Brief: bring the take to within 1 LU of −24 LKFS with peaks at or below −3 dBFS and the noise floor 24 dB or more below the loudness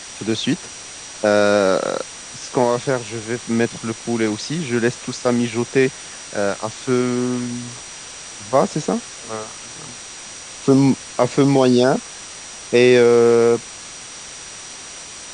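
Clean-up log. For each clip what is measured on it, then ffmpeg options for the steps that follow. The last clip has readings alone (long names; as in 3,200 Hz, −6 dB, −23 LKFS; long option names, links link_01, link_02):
interfering tone 5,800 Hz; level of the tone −39 dBFS; background noise floor −36 dBFS; target noise floor −43 dBFS; integrated loudness −18.5 LKFS; sample peak −2.5 dBFS; target loudness −24.0 LKFS
→ -af "bandreject=frequency=5800:width=30"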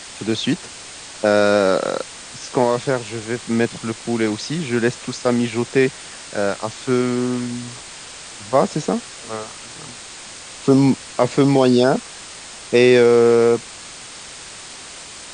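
interfering tone none found; background noise floor −37 dBFS; target noise floor −43 dBFS
→ -af "afftdn=noise_reduction=6:noise_floor=-37"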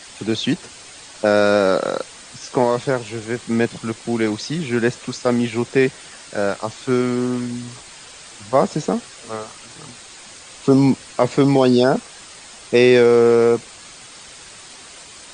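background noise floor −41 dBFS; target noise floor −43 dBFS
→ -af "afftdn=noise_reduction=6:noise_floor=-41"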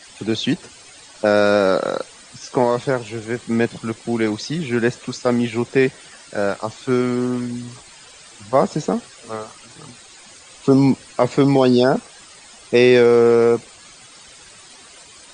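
background noise floor −44 dBFS; integrated loudness −18.5 LKFS; sample peak −2.5 dBFS; target loudness −24.0 LKFS
→ -af "volume=-5.5dB"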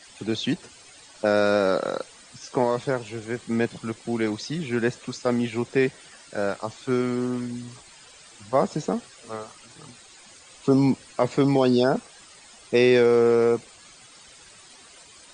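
integrated loudness −24.0 LKFS; sample peak −8.0 dBFS; background noise floor −50 dBFS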